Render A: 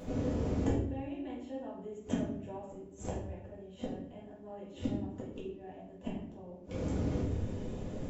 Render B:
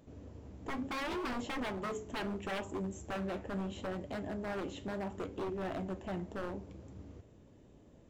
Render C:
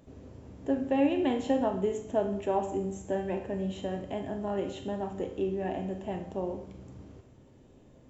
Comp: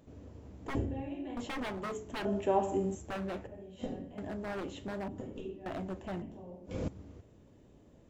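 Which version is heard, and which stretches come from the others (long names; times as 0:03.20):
B
0:00.75–0:01.37: punch in from A
0:02.25–0:02.95: punch in from C
0:03.47–0:04.18: punch in from A
0:05.08–0:05.66: punch in from A
0:06.22–0:06.88: punch in from A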